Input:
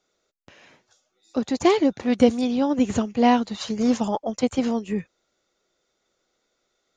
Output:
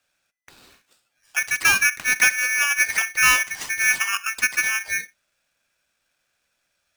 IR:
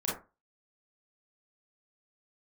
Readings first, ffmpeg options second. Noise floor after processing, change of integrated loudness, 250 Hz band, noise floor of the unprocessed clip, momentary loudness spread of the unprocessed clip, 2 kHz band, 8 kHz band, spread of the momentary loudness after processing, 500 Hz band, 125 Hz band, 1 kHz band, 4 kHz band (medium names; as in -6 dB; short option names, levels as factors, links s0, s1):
-74 dBFS, +3.5 dB, -28.0 dB, -75 dBFS, 10 LU, +19.5 dB, no reading, 9 LU, -22.5 dB, under -10 dB, -3.5 dB, +6.5 dB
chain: -filter_complex "[0:a]asoftclip=type=hard:threshold=0.282,asplit=2[s0][s1];[1:a]atrim=start_sample=2205,afade=t=out:st=0.18:d=0.01,atrim=end_sample=8379[s2];[s1][s2]afir=irnorm=-1:irlink=0,volume=0.0631[s3];[s0][s3]amix=inputs=2:normalize=0,aeval=exprs='val(0)*sgn(sin(2*PI*2000*n/s))':c=same"